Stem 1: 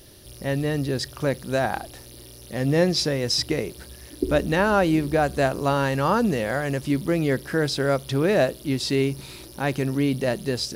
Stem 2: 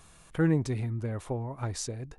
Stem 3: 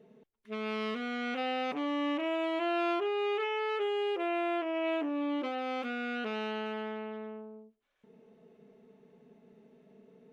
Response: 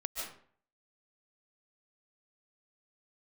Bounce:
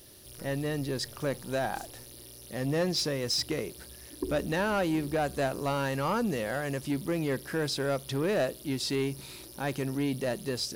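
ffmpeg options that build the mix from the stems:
-filter_complex "[0:a]lowshelf=f=120:g=-4.5,volume=-5.5dB[a];[1:a]highshelf=f=5k:g=9,acompressor=threshold=-33dB:ratio=3,acrusher=bits=5:dc=4:mix=0:aa=0.000001,volume=-14.5dB[b];[a][b]amix=inputs=2:normalize=0,highshelf=f=7.5k:g=5.5,asoftclip=type=tanh:threshold=-21.5dB"

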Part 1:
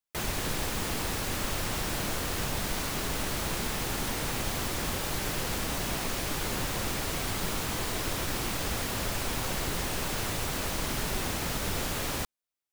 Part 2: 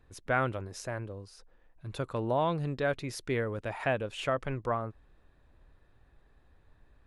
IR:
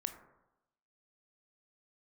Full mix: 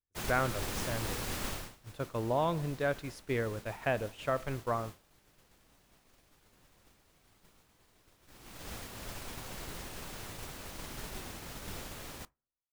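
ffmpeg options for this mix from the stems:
-filter_complex "[0:a]volume=-0.5dB,afade=t=out:st=1.46:d=0.31:silence=0.281838,afade=t=in:st=8.19:d=0.48:silence=0.421697,asplit=2[a][b];[b]volume=-3dB[c];[1:a]volume=-4.5dB,asplit=3[d][e][f];[e]volume=-7dB[g];[f]apad=whole_len=560952[h];[a][h]sidechaincompress=threshold=-38dB:ratio=8:attack=16:release=258[i];[2:a]atrim=start_sample=2205[j];[c][g]amix=inputs=2:normalize=0[k];[k][j]afir=irnorm=-1:irlink=0[l];[i][d][l]amix=inputs=3:normalize=0,agate=range=-33dB:threshold=-33dB:ratio=3:detection=peak"

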